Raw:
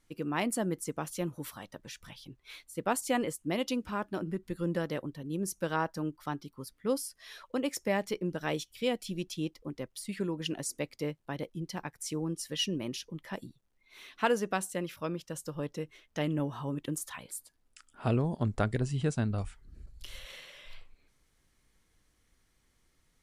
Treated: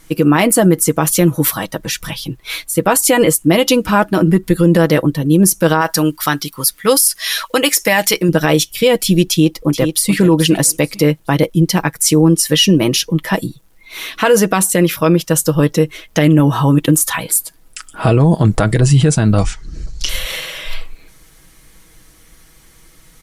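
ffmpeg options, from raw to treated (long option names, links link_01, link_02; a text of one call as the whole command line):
ffmpeg -i in.wav -filter_complex "[0:a]asettb=1/sr,asplit=3[link_01][link_02][link_03];[link_01]atrim=end=5.814[link_04];[link_02]atrim=start=5.81:end=8.29,asetpts=PTS-STARTPTS,afade=type=in:duration=0.004:curve=qsin,afade=type=out:start_time=2.476:duration=0.004:curve=qsin,tiltshelf=frequency=970:gain=-7.5[link_05];[link_03]atrim=start=8.286[link_06];[link_04][link_05]acrossfade=duration=0.004:curve1=hsin:curve2=qsin[link_07];[link_07][link_06]acrossfade=duration=0.004:curve1=qsin:curve2=hsin,asplit=2[link_08][link_09];[link_09]afade=type=in:start_time=9.28:duration=0.01,afade=type=out:start_time=10.14:duration=0.01,aecho=0:1:430|860|1290:0.298538|0.0746346|0.0186586[link_10];[link_08][link_10]amix=inputs=2:normalize=0,asettb=1/sr,asplit=3[link_11][link_12][link_13];[link_11]atrim=end=19.424[link_14];[link_12]atrim=start=19.42:end=20.09,asetpts=PTS-STARTPTS,afade=type=in:duration=0.004:curve=qsin,afade=type=out:start_time=0.666:duration=0.004:curve=qsin,lowpass=frequency=6000:width_type=q:width=3.1[link_15];[link_13]atrim=start=20.086[link_16];[link_14][link_15]acrossfade=duration=0.004:curve1=hsin:curve2=qsin[link_17];[link_17][link_16]acrossfade=duration=0.004:curve1=qsin:curve2=hsin,equalizer=frequency=13000:width_type=o:width=0.77:gain=8,aecho=1:1:6.2:0.47,alimiter=level_in=24dB:limit=-1dB:release=50:level=0:latency=1,volume=-1dB" out.wav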